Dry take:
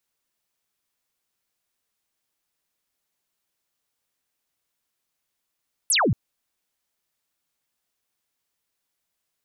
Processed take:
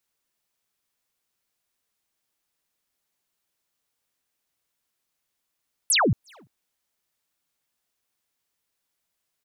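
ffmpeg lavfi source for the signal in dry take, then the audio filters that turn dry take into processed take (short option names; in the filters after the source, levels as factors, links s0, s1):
-f lavfi -i "aevalsrc='0.141*clip(t/0.002,0,1)*clip((0.23-t)/0.002,0,1)*sin(2*PI*12000*0.23/log(88/12000)*(exp(log(88/12000)*t/0.23)-1))':d=0.23:s=44100"
-filter_complex "[0:a]asplit=2[s0][s1];[s1]adelay=340,highpass=300,lowpass=3400,asoftclip=type=hard:threshold=0.0447,volume=0.0708[s2];[s0][s2]amix=inputs=2:normalize=0"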